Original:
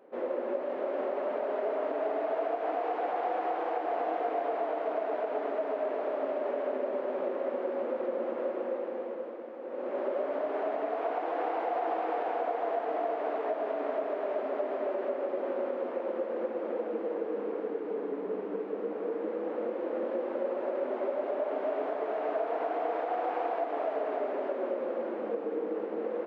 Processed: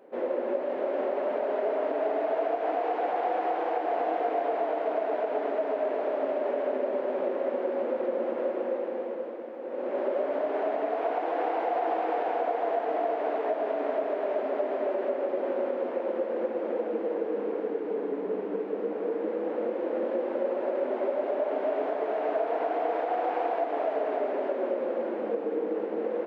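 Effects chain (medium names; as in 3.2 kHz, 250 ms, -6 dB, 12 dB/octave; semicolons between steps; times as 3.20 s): peaking EQ 1.2 kHz -4 dB 0.39 oct; trim +3.5 dB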